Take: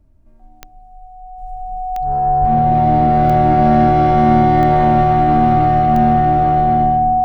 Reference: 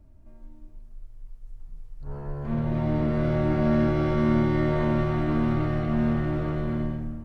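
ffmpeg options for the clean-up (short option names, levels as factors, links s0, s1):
-filter_complex "[0:a]adeclick=t=4,bandreject=f=740:w=30,asplit=3[s0][s1][s2];[s0]afade=t=out:st=2.4:d=0.02[s3];[s1]highpass=f=140:w=0.5412,highpass=f=140:w=1.3066,afade=t=in:st=2.4:d=0.02,afade=t=out:st=2.52:d=0.02[s4];[s2]afade=t=in:st=2.52:d=0.02[s5];[s3][s4][s5]amix=inputs=3:normalize=0,asetnsamples=n=441:p=0,asendcmd='1.38 volume volume -8dB',volume=1"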